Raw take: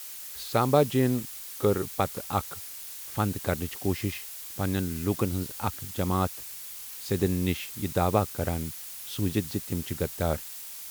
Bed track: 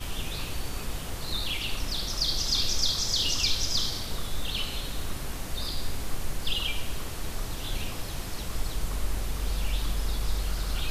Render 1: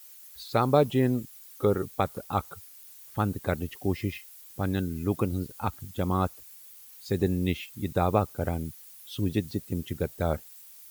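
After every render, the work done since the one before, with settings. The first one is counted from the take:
broadband denoise 13 dB, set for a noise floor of −41 dBFS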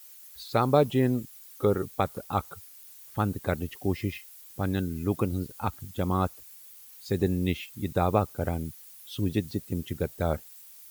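no processing that can be heard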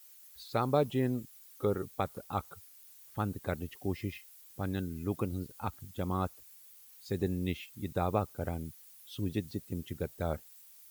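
level −6.5 dB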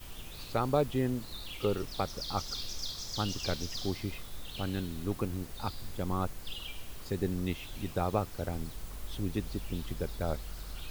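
mix in bed track −12.5 dB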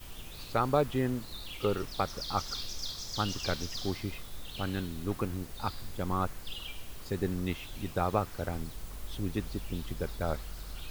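dynamic equaliser 1,400 Hz, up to +5 dB, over −47 dBFS, Q 1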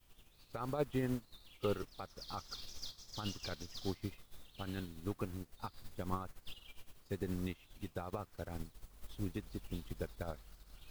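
brickwall limiter −23.5 dBFS, peak gain reduction 10.5 dB
expander for the loud parts 2.5 to 1, over −44 dBFS

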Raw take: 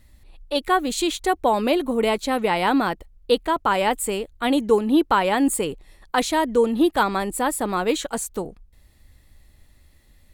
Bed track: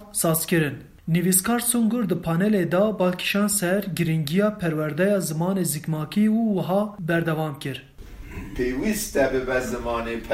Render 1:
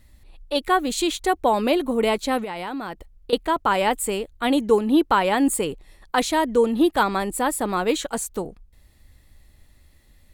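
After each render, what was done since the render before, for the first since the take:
0:02.43–0:03.33: downward compressor 5 to 1, threshold −28 dBFS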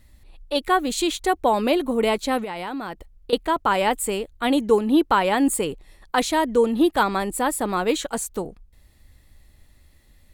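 no processing that can be heard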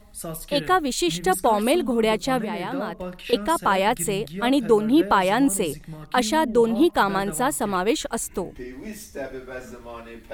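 mix in bed track −12 dB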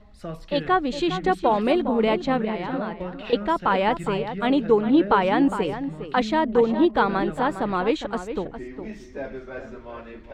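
high-frequency loss of the air 200 metres
slap from a distant wall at 70 metres, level −10 dB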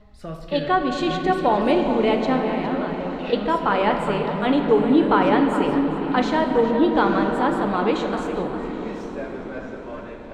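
feedback delay with all-pass diffusion 903 ms, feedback 41%, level −14 dB
rectangular room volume 220 cubic metres, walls hard, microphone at 0.33 metres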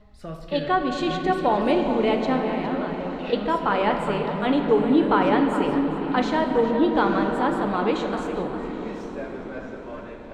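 level −2 dB

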